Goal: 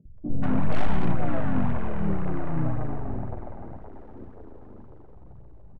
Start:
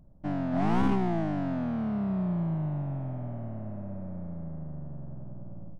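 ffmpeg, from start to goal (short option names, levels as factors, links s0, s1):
-filter_complex "[0:a]lowpass=1600,lowshelf=f=96:g=9.5,aeval=exprs='clip(val(0),-1,0.0355)':c=same,acompressor=threshold=0.0708:ratio=8,aeval=exprs='0.106*(cos(1*acos(clip(val(0)/0.106,-1,1)))-cos(1*PI/2))+0.0119*(cos(3*acos(clip(val(0)/0.106,-1,1)))-cos(3*PI/2))+0.00119*(cos(5*acos(clip(val(0)/0.106,-1,1)))-cos(5*PI/2))+0.015*(cos(8*acos(clip(val(0)/0.106,-1,1)))-cos(8*PI/2))':c=same,flanger=delay=0:depth=2.8:regen=20:speed=1.9:shape=triangular,asplit=2[s0][s1];[s1]asetrate=35002,aresample=44100,atempo=1.25992,volume=0.794[s2];[s0][s2]amix=inputs=2:normalize=0,acrossover=split=150|450[s3][s4][s5];[s3]adelay=50[s6];[s5]adelay=180[s7];[s6][s4][s7]amix=inputs=3:normalize=0,volume=2.11"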